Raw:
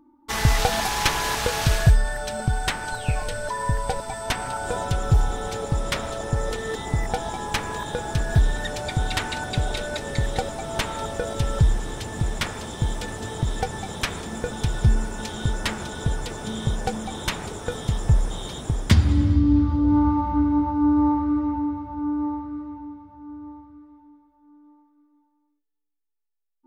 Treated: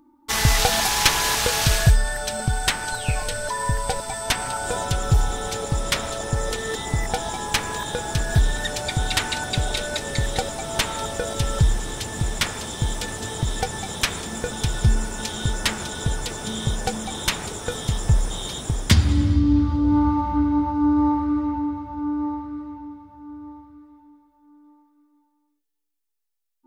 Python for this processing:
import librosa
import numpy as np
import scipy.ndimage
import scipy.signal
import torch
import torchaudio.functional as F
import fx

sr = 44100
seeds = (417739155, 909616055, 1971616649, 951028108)

y = fx.high_shelf(x, sr, hz=2400.0, db=8.0)